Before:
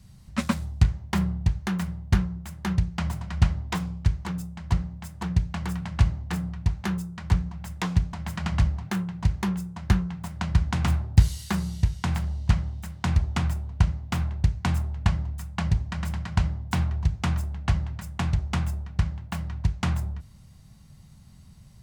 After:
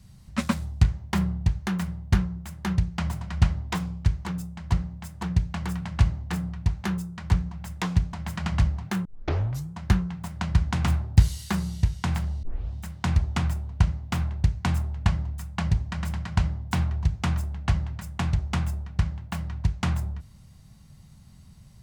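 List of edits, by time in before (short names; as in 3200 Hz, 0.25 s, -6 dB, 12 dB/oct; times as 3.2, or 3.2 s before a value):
9.05 tape start 0.68 s
12.43 tape start 0.31 s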